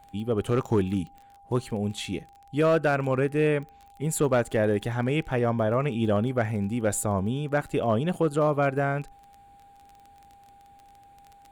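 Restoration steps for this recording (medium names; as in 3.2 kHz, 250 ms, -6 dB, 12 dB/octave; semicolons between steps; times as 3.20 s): clip repair -15.5 dBFS; de-click; band-stop 800 Hz, Q 30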